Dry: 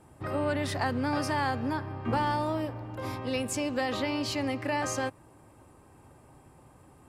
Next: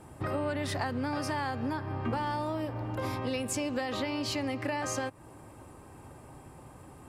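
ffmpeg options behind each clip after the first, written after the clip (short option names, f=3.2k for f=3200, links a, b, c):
-af "acompressor=threshold=-36dB:ratio=4,volume=5.5dB"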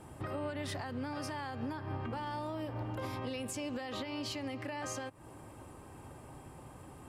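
-af "equalizer=f=3.1k:t=o:w=0.26:g=3.5,alimiter=level_in=5dB:limit=-24dB:level=0:latency=1:release=232,volume=-5dB,volume=-1dB"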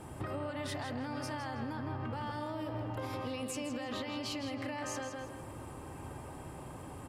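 -filter_complex "[0:a]asplit=2[a][b];[b]adelay=162,lowpass=f=4.6k:p=1,volume=-5dB,asplit=2[c][d];[d]adelay=162,lowpass=f=4.6k:p=1,volume=0.36,asplit=2[e][f];[f]adelay=162,lowpass=f=4.6k:p=1,volume=0.36,asplit=2[g][h];[h]adelay=162,lowpass=f=4.6k:p=1,volume=0.36[i];[a][c][e][g][i]amix=inputs=5:normalize=0,acompressor=threshold=-39dB:ratio=6,volume=4dB"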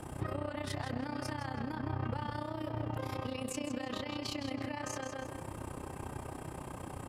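-filter_complex "[0:a]acrossover=split=190[a][b];[b]acompressor=threshold=-39dB:ratio=6[c];[a][c]amix=inputs=2:normalize=0,tremolo=f=31:d=0.788,volume=6dB"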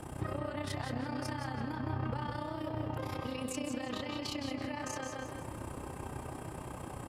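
-af "aecho=1:1:178:0.355"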